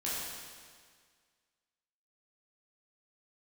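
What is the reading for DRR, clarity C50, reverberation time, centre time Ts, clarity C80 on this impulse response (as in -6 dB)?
-8.5 dB, -2.5 dB, 1.8 s, 122 ms, 0.0 dB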